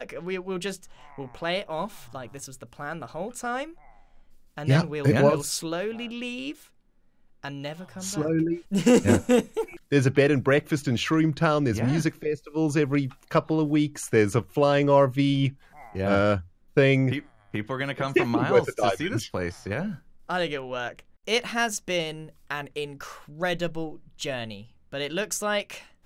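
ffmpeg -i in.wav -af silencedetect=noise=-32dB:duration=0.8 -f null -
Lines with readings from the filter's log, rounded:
silence_start: 3.64
silence_end: 4.58 | silence_duration: 0.94
silence_start: 6.52
silence_end: 7.44 | silence_duration: 0.92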